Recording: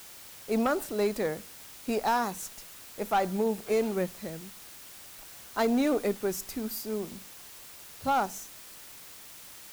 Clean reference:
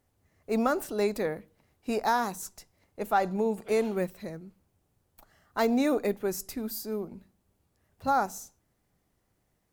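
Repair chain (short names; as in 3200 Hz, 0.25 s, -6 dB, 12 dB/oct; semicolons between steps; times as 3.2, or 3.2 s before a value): clip repair -20 dBFS; denoiser 26 dB, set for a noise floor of -48 dBFS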